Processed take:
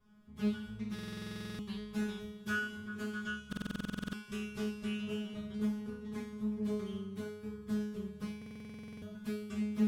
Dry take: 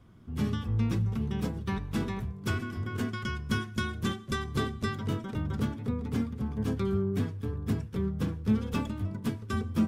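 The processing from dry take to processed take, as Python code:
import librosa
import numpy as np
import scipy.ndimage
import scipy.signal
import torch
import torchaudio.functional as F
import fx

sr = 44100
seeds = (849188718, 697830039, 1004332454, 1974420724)

y = fx.peak_eq(x, sr, hz=280.0, db=-4.5, octaves=1.0)
y = fx.comb_fb(y, sr, f0_hz=210.0, decay_s=0.76, harmonics='all', damping=0.0, mix_pct=100)
y = fx.echo_thinned(y, sr, ms=222, feedback_pct=67, hz=420.0, wet_db=-21)
y = fx.buffer_glitch(y, sr, at_s=(0.94, 3.48, 8.37), block=2048, repeats=13)
y = fx.doppler_dist(y, sr, depth_ms=0.31)
y = y * librosa.db_to_amplitude(11.5)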